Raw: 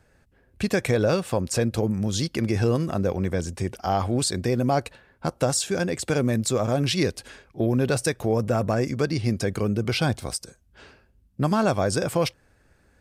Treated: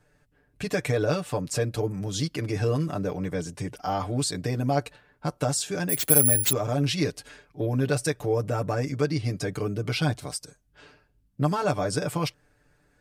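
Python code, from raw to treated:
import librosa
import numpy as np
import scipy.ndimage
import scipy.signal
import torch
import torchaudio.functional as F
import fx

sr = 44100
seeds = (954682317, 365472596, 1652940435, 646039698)

y = x + 0.89 * np.pad(x, (int(6.8 * sr / 1000.0), 0))[:len(x)]
y = fx.resample_bad(y, sr, factor=4, down='none', up='zero_stuff', at=(5.89, 6.53))
y = y * 10.0 ** (-5.5 / 20.0)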